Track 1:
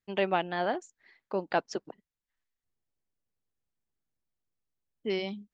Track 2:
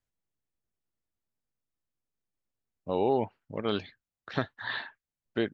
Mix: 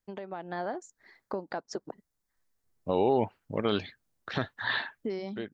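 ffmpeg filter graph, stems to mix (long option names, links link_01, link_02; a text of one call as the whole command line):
ffmpeg -i stem1.wav -i stem2.wav -filter_complex "[0:a]alimiter=limit=-23dB:level=0:latency=1:release=493,equalizer=frequency=2800:width_type=o:width=0.7:gain=-14,acompressor=threshold=-40dB:ratio=4,volume=1dB,asplit=2[link_01][link_02];[1:a]volume=-2.5dB[link_03];[link_02]apad=whole_len=243933[link_04];[link_03][link_04]sidechaincompress=threshold=-46dB:ratio=8:attack=16:release=1350[link_05];[link_01][link_05]amix=inputs=2:normalize=0,dynaudnorm=framelen=150:gausssize=5:maxgain=7dB,alimiter=limit=-14.5dB:level=0:latency=1:release=89" out.wav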